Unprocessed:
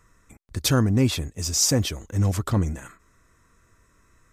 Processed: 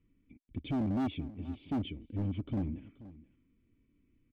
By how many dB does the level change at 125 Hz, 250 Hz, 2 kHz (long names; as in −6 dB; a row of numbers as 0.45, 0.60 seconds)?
−14.5, −8.0, −18.0 decibels